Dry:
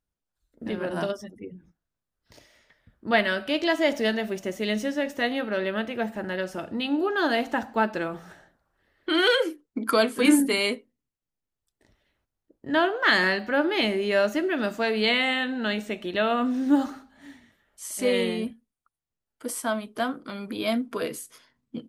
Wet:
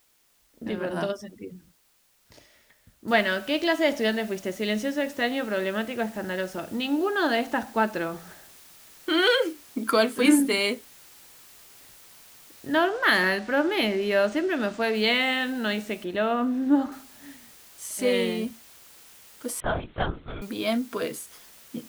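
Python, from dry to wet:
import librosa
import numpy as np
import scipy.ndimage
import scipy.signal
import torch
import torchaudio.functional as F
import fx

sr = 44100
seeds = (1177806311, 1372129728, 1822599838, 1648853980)

y = fx.noise_floor_step(x, sr, seeds[0], at_s=3.08, before_db=-65, after_db=-51, tilt_db=0.0)
y = fx.resample_linear(y, sr, factor=3, at=(12.77, 14.95))
y = fx.high_shelf(y, sr, hz=2900.0, db=-11.0, at=(16.04, 16.92))
y = fx.lpc_vocoder(y, sr, seeds[1], excitation='whisper', order=10, at=(19.6, 20.42))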